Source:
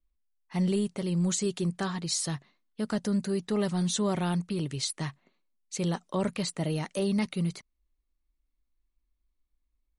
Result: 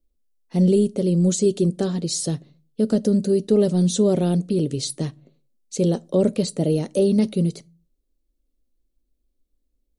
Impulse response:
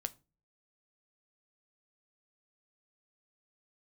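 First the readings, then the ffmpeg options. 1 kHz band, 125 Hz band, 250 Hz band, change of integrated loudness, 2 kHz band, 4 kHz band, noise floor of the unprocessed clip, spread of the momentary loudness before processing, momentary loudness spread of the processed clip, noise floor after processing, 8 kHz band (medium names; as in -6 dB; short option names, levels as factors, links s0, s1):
-1.0 dB, +8.5 dB, +9.5 dB, +9.0 dB, -4.5 dB, +3.0 dB, -79 dBFS, 9 LU, 9 LU, -73 dBFS, +4.5 dB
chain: -filter_complex "[0:a]equalizer=f=250:t=o:w=1:g=6,equalizer=f=500:t=o:w=1:g=11,equalizer=f=1000:t=o:w=1:g=-12,equalizer=f=2000:t=o:w=1:g=-9,asplit=2[s0][s1];[1:a]atrim=start_sample=2205[s2];[s1][s2]afir=irnorm=-1:irlink=0,volume=0.891[s3];[s0][s3]amix=inputs=2:normalize=0"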